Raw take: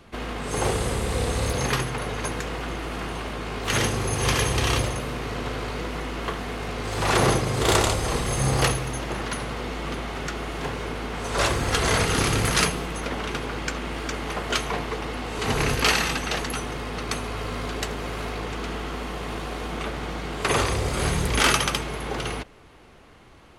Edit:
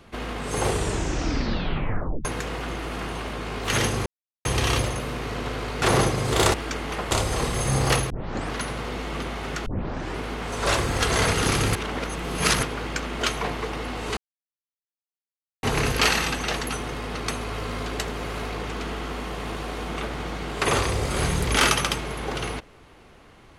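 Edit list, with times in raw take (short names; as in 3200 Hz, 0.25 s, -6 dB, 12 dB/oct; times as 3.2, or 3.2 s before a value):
0.68 tape stop 1.57 s
4.06–4.45 mute
5.82–7.11 cut
8.82 tape start 0.42 s
10.38 tape start 0.53 s
12.47–13.35 reverse
13.92–14.49 move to 7.83
15.46 insert silence 1.46 s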